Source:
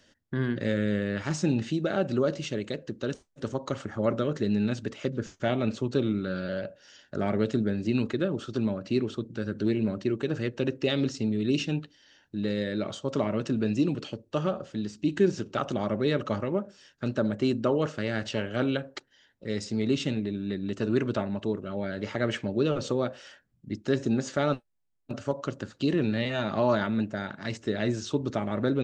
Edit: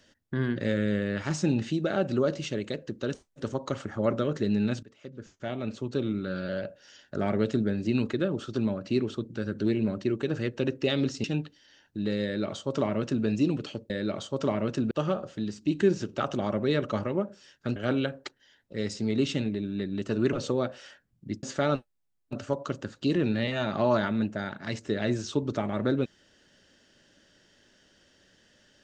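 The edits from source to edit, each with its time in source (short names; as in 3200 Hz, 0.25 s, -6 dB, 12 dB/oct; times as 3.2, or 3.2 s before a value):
4.83–6.55 fade in, from -21.5 dB
11.24–11.62 cut
12.62–13.63 copy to 14.28
17.13–18.47 cut
21.04–22.74 cut
23.84–24.21 cut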